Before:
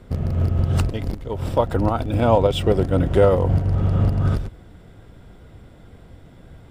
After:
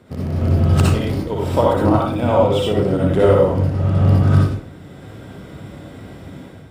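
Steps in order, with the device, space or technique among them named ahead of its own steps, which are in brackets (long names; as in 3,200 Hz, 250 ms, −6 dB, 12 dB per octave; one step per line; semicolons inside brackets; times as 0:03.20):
far laptop microphone (convolution reverb RT60 0.50 s, pre-delay 55 ms, DRR −3.5 dB; high-pass filter 120 Hz 12 dB per octave; automatic gain control gain up to 8 dB)
level −1 dB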